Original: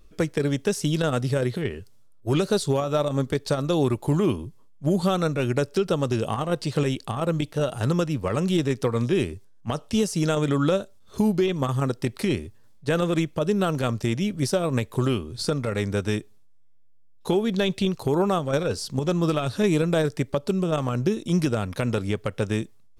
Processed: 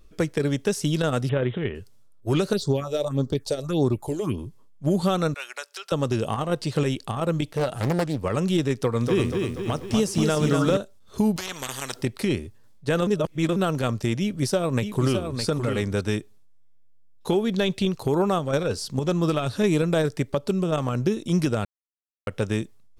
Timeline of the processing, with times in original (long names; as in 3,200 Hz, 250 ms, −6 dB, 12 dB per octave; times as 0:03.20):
0:01.29–0:01.75: bad sample-rate conversion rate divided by 6×, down none, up filtered
0:02.53–0:04.38: all-pass phaser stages 4, 1.7 Hz, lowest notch 170–2,600 Hz
0:05.34–0:05.92: Bessel high-pass filter 1,200 Hz, order 4
0:07.57–0:08.18: highs frequency-modulated by the lows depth 0.65 ms
0:08.77–0:10.77: feedback echo at a low word length 241 ms, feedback 55%, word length 9 bits, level −4 dB
0:11.36–0:12.02: every bin compressed towards the loudest bin 4 to 1
0:13.07–0:13.56: reverse
0:14.21–0:16.01: single-tap delay 613 ms −7 dB
0:21.65–0:22.27: silence